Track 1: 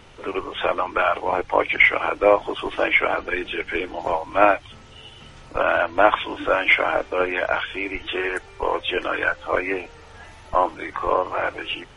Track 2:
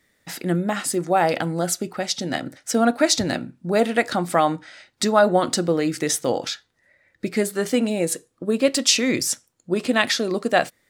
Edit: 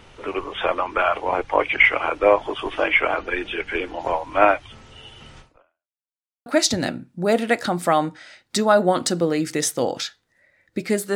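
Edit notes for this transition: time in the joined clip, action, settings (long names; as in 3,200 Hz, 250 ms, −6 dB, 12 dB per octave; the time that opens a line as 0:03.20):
track 1
0:05.40–0:05.97: fade out exponential
0:05.97–0:06.46: silence
0:06.46: continue with track 2 from 0:02.93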